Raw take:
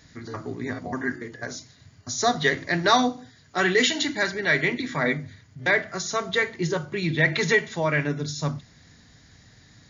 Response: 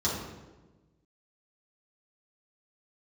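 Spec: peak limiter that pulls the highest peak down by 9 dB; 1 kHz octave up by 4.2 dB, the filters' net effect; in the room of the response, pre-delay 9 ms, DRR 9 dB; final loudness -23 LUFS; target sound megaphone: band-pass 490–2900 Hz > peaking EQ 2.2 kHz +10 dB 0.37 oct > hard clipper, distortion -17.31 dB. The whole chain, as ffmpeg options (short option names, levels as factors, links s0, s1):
-filter_complex "[0:a]equalizer=f=1000:t=o:g=6,alimiter=limit=0.251:level=0:latency=1,asplit=2[s0][s1];[1:a]atrim=start_sample=2205,adelay=9[s2];[s1][s2]afir=irnorm=-1:irlink=0,volume=0.119[s3];[s0][s3]amix=inputs=2:normalize=0,highpass=490,lowpass=2900,equalizer=f=2200:t=o:w=0.37:g=10,asoftclip=type=hard:threshold=0.2,volume=1.06"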